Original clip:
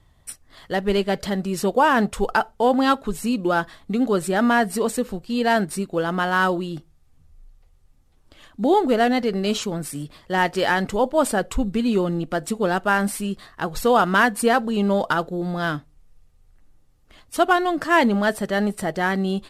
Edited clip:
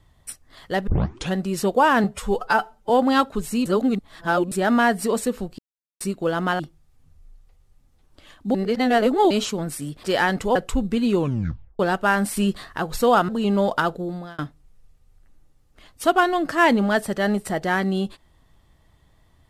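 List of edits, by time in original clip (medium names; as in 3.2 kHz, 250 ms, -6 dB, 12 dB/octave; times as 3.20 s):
0.87 s: tape start 0.48 s
2.04–2.61 s: stretch 1.5×
3.37–4.23 s: reverse
5.30–5.72 s: mute
6.31–6.73 s: delete
8.68–9.44 s: reverse
10.17–10.52 s: delete
11.04–11.38 s: delete
11.98 s: tape stop 0.64 s
13.19–13.61 s: gain +5.5 dB
14.11–14.61 s: delete
15.29–15.71 s: fade out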